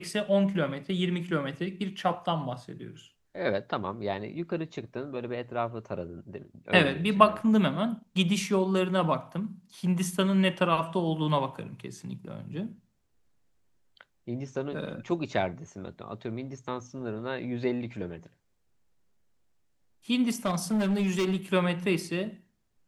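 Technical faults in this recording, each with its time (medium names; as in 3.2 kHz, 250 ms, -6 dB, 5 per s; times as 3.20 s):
20.45–21.36 s: clipped -22.5 dBFS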